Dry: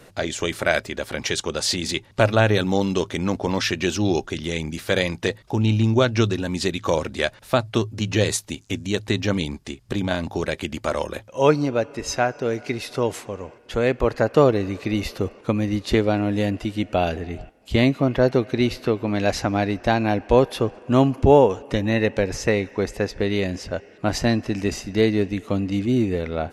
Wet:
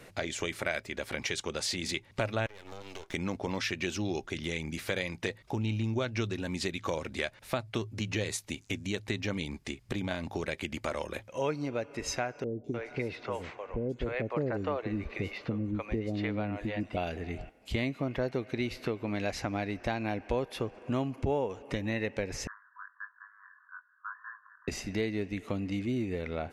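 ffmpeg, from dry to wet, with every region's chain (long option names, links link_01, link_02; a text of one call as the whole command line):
ffmpeg -i in.wav -filter_complex "[0:a]asettb=1/sr,asplit=3[link_01][link_02][link_03];[link_01]atrim=end=2.464[link_04];[link_02]atrim=start=2.46:end=3.14,asetpts=PTS-STARTPTS,afade=type=in:duration=0.004:curve=qsin,afade=type=out:start_time=0.676:duration=0.004:curve=qsin,highpass=frequency=350:width=0.5412,highpass=frequency=350:width=1.3066,aeval=exprs='max(val(0),0)':channel_layout=same,acompressor=threshold=-34dB:ratio=8:attack=3.2:release=140:knee=1:detection=peak[link_05];[link_03]atrim=start=3.136[link_06];[link_04][link_05]acrossfade=duration=0.004:curve1=hsin:curve2=qsin[link_07];[link_07][link_06]acrossfade=duration=0.004:curve1=qsin:curve2=hsin,asettb=1/sr,asplit=3[link_08][link_09][link_10];[link_08]atrim=end=12.444[link_11];[link_09]atrim=start=12.44:end=16.97,asetpts=PTS-STARTPTS,afade=type=in:duration=0.004:curve=qsin,afade=type=out:start_time=4.526:duration=0.004:curve=qsin,aemphasis=mode=reproduction:type=75fm,acrossover=split=510|5500[link_12][link_13][link_14];[link_14]adelay=200[link_15];[link_13]adelay=300[link_16];[link_12][link_16][link_15]amix=inputs=3:normalize=0,atrim=end_sample=199773[link_17];[link_10]atrim=start=16.966[link_18];[link_11][link_17]acrossfade=duration=0.004:curve1=hsin:curve2=qsin[link_19];[link_19][link_18]acrossfade=duration=0.004:curve1=qsin:curve2=hsin,asettb=1/sr,asplit=3[link_20][link_21][link_22];[link_20]atrim=end=22.474[link_23];[link_21]atrim=start=22.47:end=24.68,asetpts=PTS-STARTPTS,afade=type=in:duration=0.004:curve=qsin,afade=type=out:start_time=2.206:duration=0.004:curve=qsin,asuperpass=centerf=1300:order=20:qfactor=1.8,flanger=delay=19.5:depth=2.6:speed=1.6[link_24];[link_22]atrim=start=24.676[link_25];[link_23][link_24]acrossfade=duration=0.004:curve1=hsin:curve2=qsin[link_26];[link_26][link_25]acrossfade=duration=0.004:curve1=qsin:curve2=hsin,equalizer=frequency=2200:width_type=o:width=0.48:gain=6,acompressor=threshold=-28dB:ratio=2.5,volume=-4.5dB" out.wav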